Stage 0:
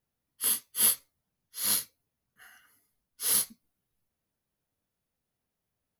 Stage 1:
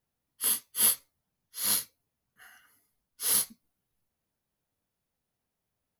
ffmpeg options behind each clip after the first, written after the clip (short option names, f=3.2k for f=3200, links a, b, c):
-af "equalizer=f=850:t=o:w=0.77:g=2"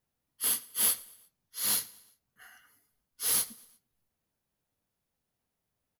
-filter_complex "[0:a]asplit=2[a][b];[b]aeval=exprs='(mod(10.6*val(0)+1,2)-1)/10.6':c=same,volume=-6dB[c];[a][c]amix=inputs=2:normalize=0,aecho=1:1:116|232|348:0.075|0.036|0.0173,volume=-3.5dB"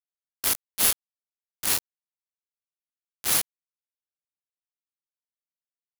-af "acrusher=bits=3:mix=0:aa=0.000001,volume=4dB"